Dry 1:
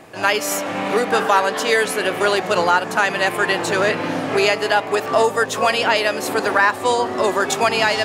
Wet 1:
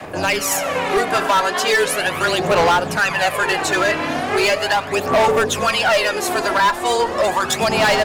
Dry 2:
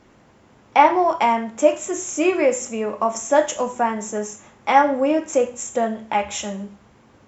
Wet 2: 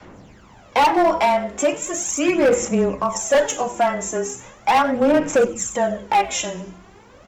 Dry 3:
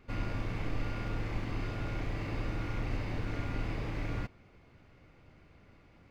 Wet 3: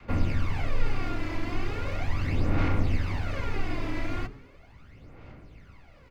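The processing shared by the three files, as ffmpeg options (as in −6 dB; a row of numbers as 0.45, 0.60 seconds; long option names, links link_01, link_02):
-filter_complex "[0:a]bandreject=frequency=50:width_type=h:width=6,bandreject=frequency=100:width_type=h:width=6,bandreject=frequency=150:width_type=h:width=6,bandreject=frequency=200:width_type=h:width=6,bandreject=frequency=250:width_type=h:width=6,bandreject=frequency=300:width_type=h:width=6,bandreject=frequency=350:width_type=h:width=6,bandreject=frequency=400:width_type=h:width=6,bandreject=frequency=450:width_type=h:width=6,bandreject=frequency=500:width_type=h:width=6,adynamicequalizer=threshold=0.0178:dfrequency=340:dqfactor=2.1:tfrequency=340:tqfactor=2.1:attack=5:release=100:ratio=0.375:range=2.5:mode=cutabove:tftype=bell,asplit=2[link_01][link_02];[link_02]acompressor=threshold=-32dB:ratio=6,volume=-2.5dB[link_03];[link_01][link_03]amix=inputs=2:normalize=0,aphaser=in_gain=1:out_gain=1:delay=3:decay=0.6:speed=0.38:type=sinusoidal,asoftclip=type=hard:threshold=-11.5dB,afreqshift=-16,asplit=4[link_04][link_05][link_06][link_07];[link_05]adelay=96,afreqshift=-140,volume=-21dB[link_08];[link_06]adelay=192,afreqshift=-280,volume=-27.4dB[link_09];[link_07]adelay=288,afreqshift=-420,volume=-33.8dB[link_10];[link_04][link_08][link_09][link_10]amix=inputs=4:normalize=0"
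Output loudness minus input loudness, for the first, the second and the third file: +1.0, +1.0, +6.0 LU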